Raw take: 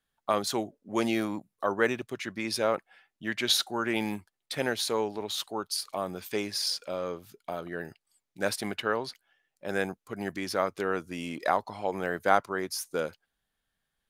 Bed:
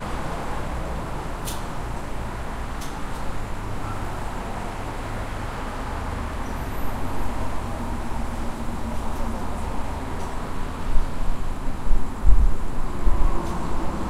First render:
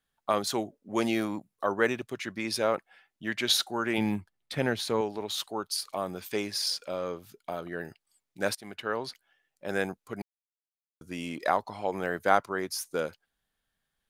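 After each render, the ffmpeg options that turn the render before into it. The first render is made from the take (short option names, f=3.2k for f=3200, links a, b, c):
-filter_complex "[0:a]asettb=1/sr,asplit=3[a][b][c];[a]atrim=end=3.984[d];[b]atrim=start=3.98:end=5.01,asetpts=PTS-STARTPTS,afade=t=in:d=0.004:c=qsin,afade=t=out:st=1.026:d=0.004:c=qsin,bass=f=250:g=8,treble=f=4k:g=-6[e];[c]atrim=start=5.006[f];[d][e]acrossfade=d=0.004:c1=hsin:c2=qsin[g];[g][f]acrossfade=d=0.004:c1=qsin:c2=hsin,asplit=4[h][i][j][k];[h]atrim=end=8.55,asetpts=PTS-STARTPTS,afade=t=out:st=8.546:d=0.004:c=hsin:silence=0.1[l];[i]atrim=start=8.55:end=10.22,asetpts=PTS-STARTPTS,afade=t=in:d=0.53:silence=0.1,afade=t=out:st=1.666:d=0.004:c=hsin[m];[j]atrim=start=10.22:end=11.01,asetpts=PTS-STARTPTS,volume=0[n];[k]atrim=start=11.01,asetpts=PTS-STARTPTS,afade=t=in:d=0.004:c=hsin[o];[l][m][n][o]concat=n=4:v=0:a=1"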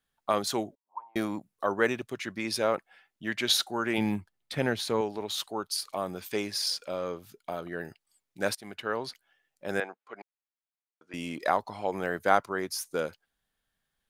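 -filter_complex "[0:a]asettb=1/sr,asplit=3[a][b][c];[a]atrim=end=0.754[d];[b]atrim=start=0.75:end=1.16,asetpts=PTS-STARTPTS,afade=t=in:d=0.004:c=qsin,afade=t=out:st=0.406:d=0.004:c=qsin,asuperpass=centerf=950:order=4:qfactor=6.4[e];[c]atrim=start=1.156[f];[d][e]acrossfade=d=0.004:c1=hsin:c2=qsin[g];[g][f]acrossfade=d=0.004:c1=qsin:c2=hsin,asettb=1/sr,asplit=3[h][i][j];[h]atrim=end=9.804[k];[i]atrim=start=9.8:end=11.14,asetpts=PTS-STARTPTS,afade=t=in:d=0.004:c=qsin,afade=t=out:st=1.336:d=0.004:c=qsin,highpass=580,lowpass=2.6k[l];[j]atrim=start=11.136[m];[k][l]acrossfade=d=0.004:c1=hsin:c2=qsin[n];[n][m]acrossfade=d=0.004:c1=qsin:c2=hsin"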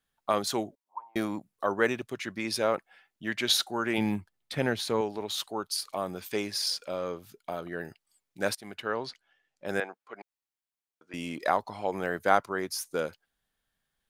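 -filter_complex "[0:a]asettb=1/sr,asplit=3[a][b][c];[a]atrim=end=8.904[d];[b]atrim=start=8.9:end=9.66,asetpts=PTS-STARTPTS,afade=t=in:d=0.004:c=qsin,afade=t=out:st=0.756:d=0.004:c=qsin,lowpass=6.7k[e];[c]atrim=start=9.656[f];[d][e]acrossfade=d=0.004:c1=hsin:c2=qsin[g];[g][f]acrossfade=d=0.004:c1=qsin:c2=hsin"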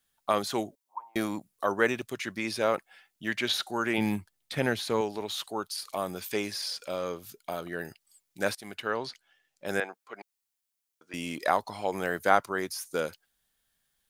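-filter_complex "[0:a]acrossover=split=2900[a][b];[b]acompressor=threshold=-44dB:ratio=4:attack=1:release=60[c];[a][c]amix=inputs=2:normalize=0,highshelf=f=3.6k:g=10.5"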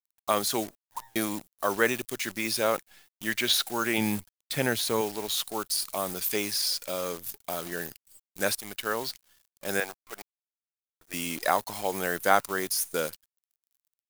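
-af "acrusher=bits=8:dc=4:mix=0:aa=0.000001,crystalizer=i=2:c=0"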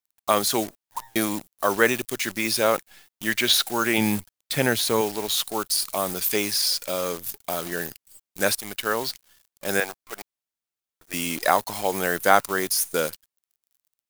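-af "volume=5dB,alimiter=limit=-1dB:level=0:latency=1"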